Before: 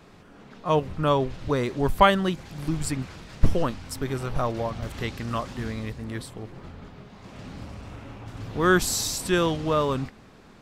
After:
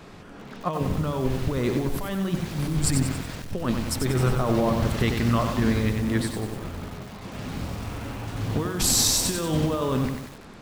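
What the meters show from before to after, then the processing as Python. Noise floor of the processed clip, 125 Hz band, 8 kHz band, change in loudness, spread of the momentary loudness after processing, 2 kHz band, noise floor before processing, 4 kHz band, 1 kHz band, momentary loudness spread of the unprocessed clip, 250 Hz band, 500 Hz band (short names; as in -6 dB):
-44 dBFS, +4.5 dB, +7.0 dB, +0.5 dB, 13 LU, -3.5 dB, -51 dBFS, +3.5 dB, -5.0 dB, 20 LU, +3.0 dB, -2.0 dB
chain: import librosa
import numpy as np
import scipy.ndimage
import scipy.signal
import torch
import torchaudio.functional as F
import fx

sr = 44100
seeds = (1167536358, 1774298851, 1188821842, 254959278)

y = fx.dynamic_eq(x, sr, hz=200.0, q=0.85, threshold_db=-37.0, ratio=4.0, max_db=5)
y = fx.over_compress(y, sr, threshold_db=-27.0, ratio=-1.0)
y = fx.echo_crushed(y, sr, ms=93, feedback_pct=55, bits=7, wet_db=-5.0)
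y = F.gain(torch.from_numpy(y), 2.0).numpy()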